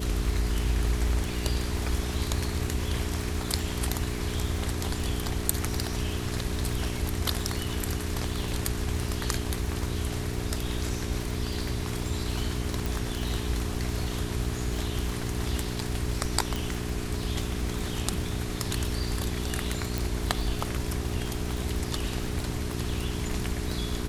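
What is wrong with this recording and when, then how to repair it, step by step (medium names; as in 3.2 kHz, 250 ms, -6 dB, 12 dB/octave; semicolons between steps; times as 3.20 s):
crackle 58 per s -32 dBFS
hum 60 Hz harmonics 7 -34 dBFS
12.86 s: pop
16.56 s: pop
19.98 s: pop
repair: de-click; de-hum 60 Hz, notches 7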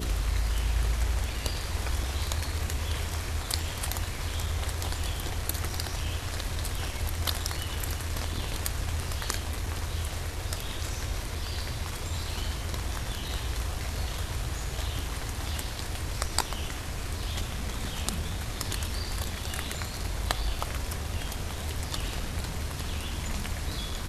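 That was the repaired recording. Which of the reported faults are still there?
19.98 s: pop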